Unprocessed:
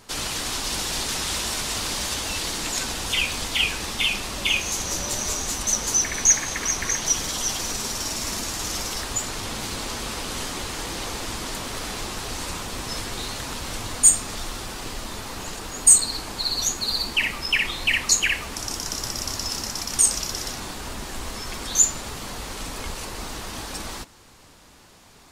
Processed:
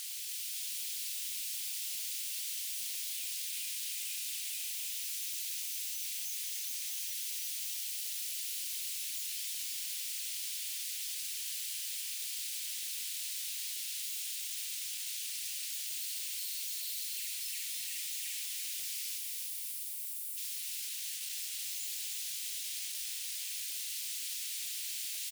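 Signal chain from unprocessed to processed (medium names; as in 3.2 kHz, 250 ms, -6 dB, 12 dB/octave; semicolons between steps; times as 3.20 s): one-bit comparator; comb 3.6 ms, depth 34%; peak limiter -27.5 dBFS, peak gain reduction 3.5 dB; steep low-pass 9.7 kHz 96 dB/octave; wavefolder -36 dBFS; inverse Chebyshev high-pass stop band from 750 Hz, stop band 60 dB, from 19.17 s stop band from 2.9 kHz, from 20.36 s stop band from 750 Hz; upward compressor, threshold -47 dBFS; bouncing-ball echo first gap 290 ms, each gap 0.85×, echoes 5; FDN reverb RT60 1.4 s, high-frequency decay 0.4×, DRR 16.5 dB; bit-crushed delay 344 ms, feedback 80%, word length 12-bit, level -13.5 dB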